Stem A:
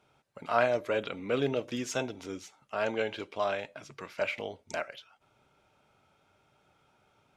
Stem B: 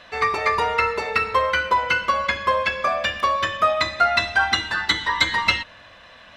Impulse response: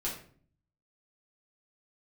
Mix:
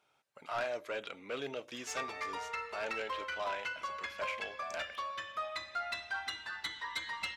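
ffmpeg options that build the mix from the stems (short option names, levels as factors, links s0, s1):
-filter_complex "[0:a]lowshelf=f=170:g=-6.5,volume=0.708[s0];[1:a]acompressor=mode=upward:threshold=0.0251:ratio=2.5,adelay=1750,volume=0.15[s1];[s0][s1]amix=inputs=2:normalize=0,lowshelf=f=490:g=-10.5,asoftclip=type=tanh:threshold=0.0355"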